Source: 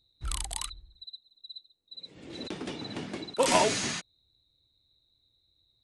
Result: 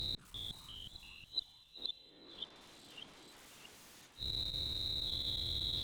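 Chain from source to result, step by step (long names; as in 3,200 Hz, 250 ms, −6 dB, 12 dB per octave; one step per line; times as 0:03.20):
every bin's largest magnitude spread in time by 120 ms
0:00.66–0:02.56: three-way crossover with the lows and the highs turned down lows −14 dB, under 240 Hz, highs −14 dB, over 2,200 Hz
downward compressor 6 to 1, threshold −35 dBFS, peak gain reduction 19 dB
sine wavefolder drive 19 dB, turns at −21 dBFS
gate with flip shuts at −30 dBFS, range −41 dB
on a send: feedback delay with all-pass diffusion 482 ms, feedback 45%, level −16 dB
on the sum: delay with pitch and tempo change per echo 343 ms, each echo −2 semitones, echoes 3, each echo −6 dB
saturating transformer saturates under 280 Hz
level +5.5 dB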